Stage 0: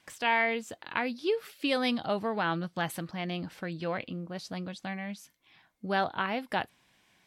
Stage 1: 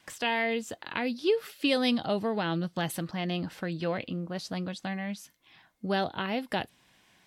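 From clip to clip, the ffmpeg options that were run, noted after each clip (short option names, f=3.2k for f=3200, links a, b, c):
-filter_complex "[0:a]bandreject=f=2.3k:w=22,acrossover=split=680|2100[a][b][c];[b]acompressor=threshold=-43dB:ratio=6[d];[a][d][c]amix=inputs=3:normalize=0,volume=3.5dB"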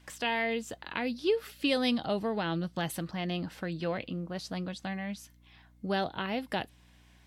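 -af "aeval=exprs='val(0)+0.00141*(sin(2*PI*60*n/s)+sin(2*PI*2*60*n/s)/2+sin(2*PI*3*60*n/s)/3+sin(2*PI*4*60*n/s)/4+sin(2*PI*5*60*n/s)/5)':c=same,volume=-2dB"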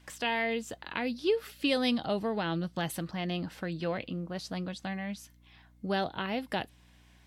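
-af anull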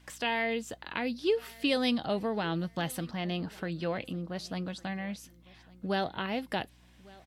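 -af "aecho=1:1:1154|2308:0.0668|0.0194"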